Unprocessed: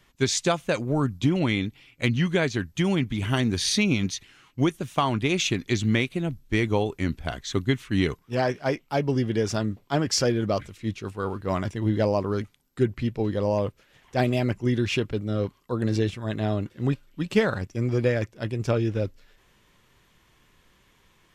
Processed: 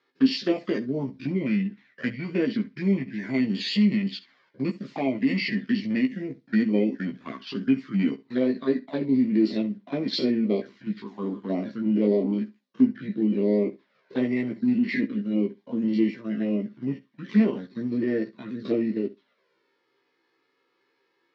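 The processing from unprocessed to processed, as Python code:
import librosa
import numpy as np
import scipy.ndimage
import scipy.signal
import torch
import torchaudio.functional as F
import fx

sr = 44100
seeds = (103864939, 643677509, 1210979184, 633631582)

p1 = fx.spec_steps(x, sr, hold_ms=50)
p2 = fx.leveller(p1, sr, passes=1)
p3 = fx.env_flanger(p2, sr, rest_ms=2.4, full_db=-19.5)
p4 = fx.formant_shift(p3, sr, semitones=-5)
p5 = fx.cabinet(p4, sr, low_hz=230.0, low_slope=24, high_hz=4500.0, hz=(230.0, 810.0, 1300.0, 2600.0), db=(8, -7, -6, -8))
p6 = fx.doubler(p5, sr, ms=15.0, db=-4.5)
y = p6 + fx.room_flutter(p6, sr, wall_m=11.4, rt60_s=0.22, dry=0)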